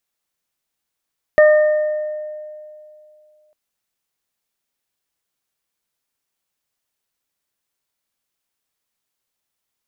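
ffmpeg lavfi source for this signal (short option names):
-f lavfi -i "aevalsrc='0.501*pow(10,-3*t/2.6)*sin(2*PI*609*t)+0.0668*pow(10,-3*t/1.05)*sin(2*PI*1218*t)+0.178*pow(10,-3*t/1.4)*sin(2*PI*1827*t)':d=2.15:s=44100"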